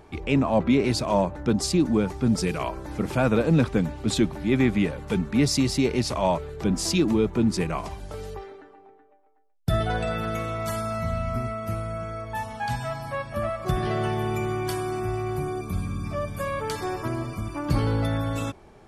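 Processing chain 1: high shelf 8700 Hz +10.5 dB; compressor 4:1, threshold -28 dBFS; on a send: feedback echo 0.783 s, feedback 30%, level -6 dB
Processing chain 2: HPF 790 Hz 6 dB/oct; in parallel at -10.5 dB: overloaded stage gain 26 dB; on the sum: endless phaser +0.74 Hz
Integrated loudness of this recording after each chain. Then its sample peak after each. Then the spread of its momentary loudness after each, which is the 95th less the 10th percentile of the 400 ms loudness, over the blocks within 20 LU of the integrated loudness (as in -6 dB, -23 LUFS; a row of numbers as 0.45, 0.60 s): -31.0, -33.5 LUFS; -14.5, -16.5 dBFS; 4, 9 LU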